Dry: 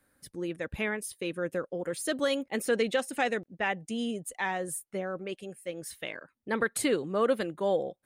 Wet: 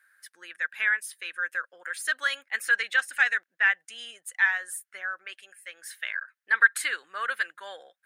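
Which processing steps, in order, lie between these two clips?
resonant high-pass 1.6 kHz, resonance Q 5.5

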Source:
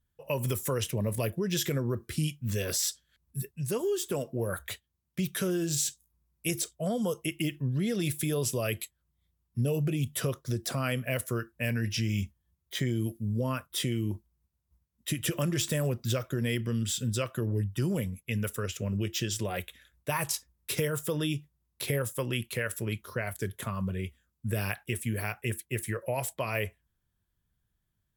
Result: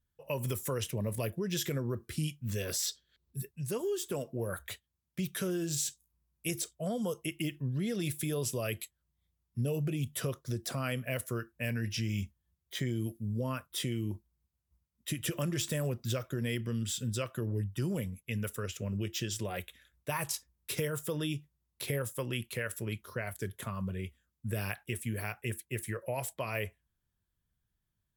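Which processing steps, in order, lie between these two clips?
2.86–3.37 s: fifteen-band graphic EQ 400 Hz +10 dB, 4 kHz +7 dB, 10 kHz -9 dB; trim -4 dB

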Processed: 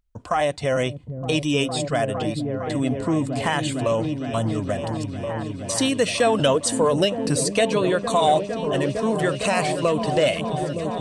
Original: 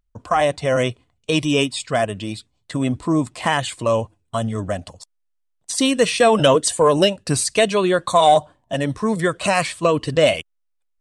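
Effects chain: delay with an opening low-pass 458 ms, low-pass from 200 Hz, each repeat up 1 oct, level -3 dB; in parallel at +2.5 dB: compression, threshold -22 dBFS, peak gain reduction 13 dB; on the sum: peaking EQ 1.1 kHz -3 dB 0.24 oct; trim -7.5 dB

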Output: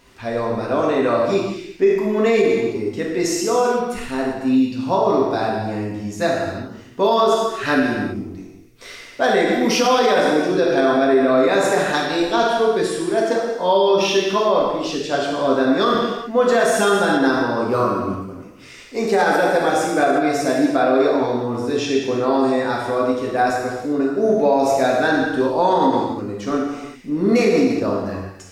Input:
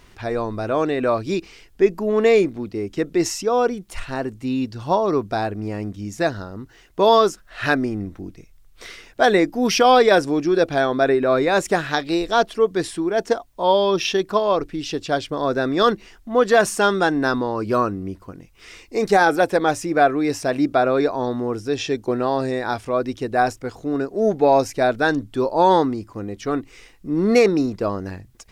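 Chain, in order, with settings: bass shelf 71 Hz -8 dB; gated-style reverb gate 420 ms falling, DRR -4 dB; loudness maximiser +3.5 dB; trim -6 dB

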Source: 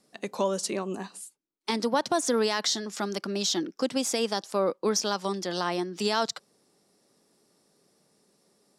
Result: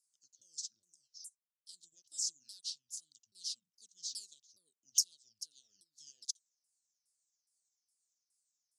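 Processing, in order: sawtooth pitch modulation -11.5 st, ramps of 415 ms; inverse Chebyshev high-pass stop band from 2.4 kHz, stop band 50 dB; upward expansion 1.5:1, over -59 dBFS; trim +7 dB

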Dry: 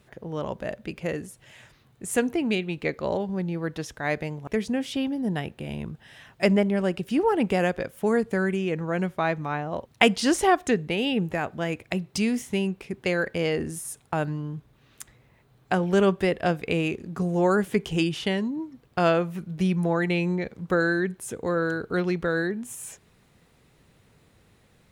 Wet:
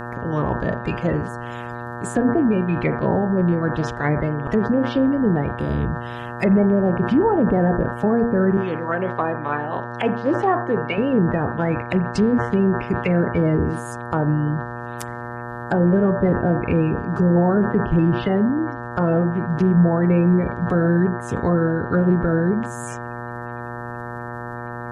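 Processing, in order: coarse spectral quantiser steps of 30 dB; 8.57–10.98 s: frequency weighting A; low-pass that closes with the level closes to 830 Hz, closed at -23 dBFS; bass shelf 210 Hz +10 dB; de-hum 117.7 Hz, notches 9; peak limiter -15.5 dBFS, peak gain reduction 9.5 dB; mains buzz 120 Hz, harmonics 15, -38 dBFS -2 dB/octave; reverberation, pre-delay 34 ms, DRR 16 dB; decay stretcher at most 95 dB/s; trim +6 dB

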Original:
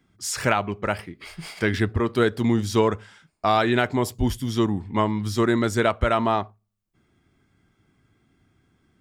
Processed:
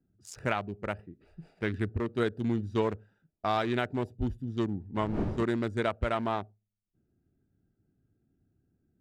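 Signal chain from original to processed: local Wiener filter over 41 samples; 4.94–5.42 s: wind noise 310 Hz -18 dBFS; trim -8 dB

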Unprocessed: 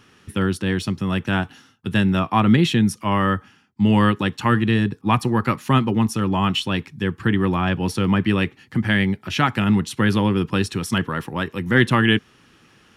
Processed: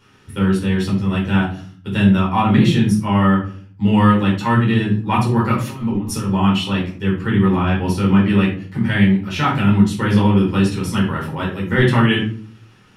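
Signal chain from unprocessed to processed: 5.58–6.31 s: compressor with a negative ratio -24 dBFS, ratio -0.5; simulated room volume 370 m³, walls furnished, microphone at 4.6 m; trim -6.5 dB

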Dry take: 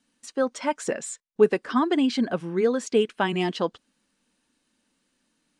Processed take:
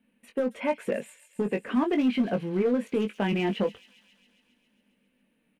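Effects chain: FFT filter 150 Hz 0 dB, 210 Hz +9 dB, 310 Hz -3 dB, 470 Hz +5 dB, 810 Hz -2 dB, 1.3 kHz -7 dB, 2.5 kHz +4 dB, 5.1 kHz -25 dB, 7.6 kHz -22 dB, 12 kHz +1 dB; peak limiter -18 dBFS, peak gain reduction 15 dB; hard clipper -20 dBFS, distortion -23 dB; doubling 20 ms -6.5 dB; feedback echo behind a high-pass 136 ms, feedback 72%, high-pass 4.8 kHz, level -6.5 dB

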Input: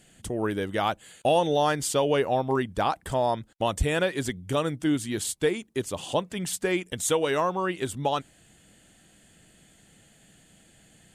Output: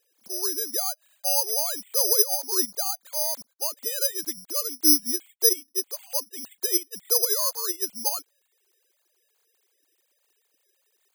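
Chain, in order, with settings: formants replaced by sine waves; distance through air 130 m; careless resampling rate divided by 8×, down none, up zero stuff; trim -8.5 dB

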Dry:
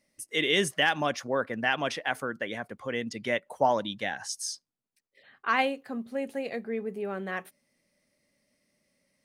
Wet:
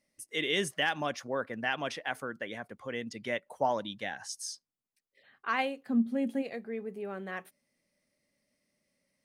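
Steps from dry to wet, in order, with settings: 5.86–6.41 s: small resonant body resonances 230/3300 Hz, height 14 dB -> 16 dB; trim -5 dB

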